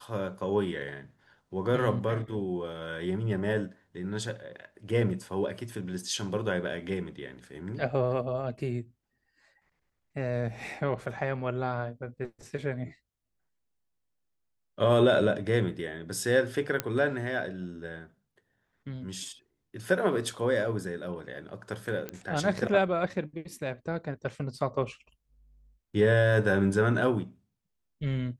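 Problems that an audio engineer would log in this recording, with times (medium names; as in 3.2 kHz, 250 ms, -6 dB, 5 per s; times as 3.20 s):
16.80 s: pop -11 dBFS
22.09 s: pop -20 dBFS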